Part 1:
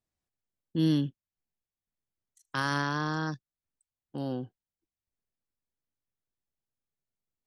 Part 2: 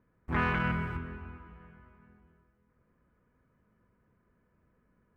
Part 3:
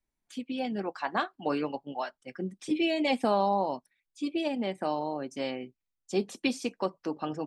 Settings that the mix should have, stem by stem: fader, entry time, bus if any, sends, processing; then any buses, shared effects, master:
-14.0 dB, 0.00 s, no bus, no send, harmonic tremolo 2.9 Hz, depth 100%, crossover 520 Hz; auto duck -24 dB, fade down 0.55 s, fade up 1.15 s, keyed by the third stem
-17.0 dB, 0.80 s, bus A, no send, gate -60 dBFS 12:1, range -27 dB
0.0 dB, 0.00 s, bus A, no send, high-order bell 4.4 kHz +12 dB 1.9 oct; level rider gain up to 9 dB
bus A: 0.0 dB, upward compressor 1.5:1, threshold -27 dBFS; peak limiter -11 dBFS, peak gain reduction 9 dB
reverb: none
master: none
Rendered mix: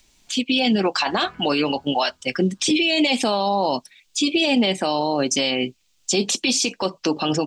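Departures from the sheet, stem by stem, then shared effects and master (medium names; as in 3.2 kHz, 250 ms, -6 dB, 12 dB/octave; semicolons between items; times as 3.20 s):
stem 1: missing harmonic tremolo 2.9 Hz, depth 100%, crossover 520 Hz; stem 3 0.0 dB -> +9.5 dB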